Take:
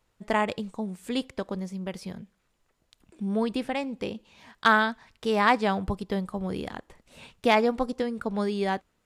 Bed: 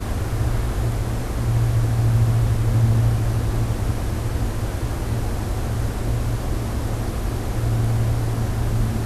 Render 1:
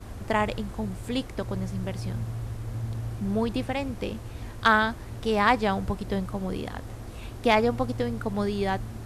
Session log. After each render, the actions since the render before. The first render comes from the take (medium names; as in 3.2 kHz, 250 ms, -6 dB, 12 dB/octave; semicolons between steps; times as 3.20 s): add bed -15 dB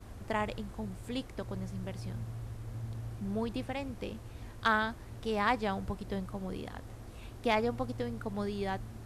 trim -8 dB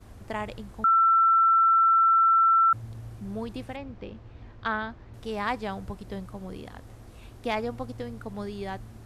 0.84–2.73 s: bleep 1.34 kHz -16.5 dBFS; 3.76–5.14 s: distance through air 190 m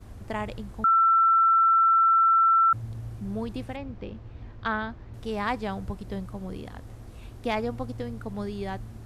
bass shelf 270 Hz +4.5 dB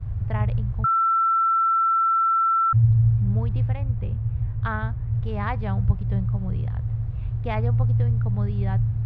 low-pass 2.4 kHz 12 dB/octave; resonant low shelf 180 Hz +12.5 dB, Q 3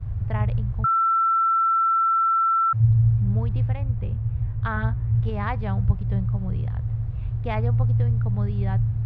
2.03–2.79 s: high-pass 110 Hz -> 240 Hz 6 dB/octave; 4.75–5.30 s: doubling 18 ms -4 dB